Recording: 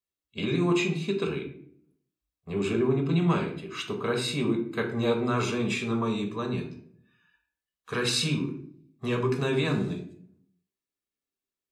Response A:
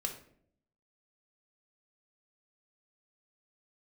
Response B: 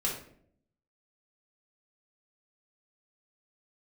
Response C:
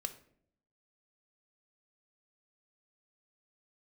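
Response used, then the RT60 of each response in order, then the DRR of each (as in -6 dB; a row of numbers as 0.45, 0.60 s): A; 0.65, 0.65, 0.65 s; 2.5, -4.5, 8.0 dB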